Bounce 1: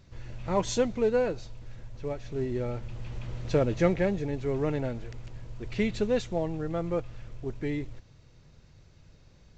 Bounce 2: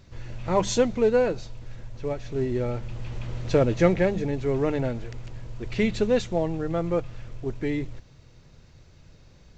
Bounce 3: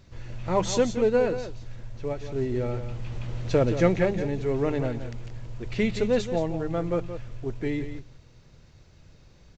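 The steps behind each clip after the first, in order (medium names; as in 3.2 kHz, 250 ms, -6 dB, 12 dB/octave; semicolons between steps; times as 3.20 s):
hum notches 50/100/150/200 Hz; trim +4.5 dB
delay 175 ms -10.5 dB; trim -1.5 dB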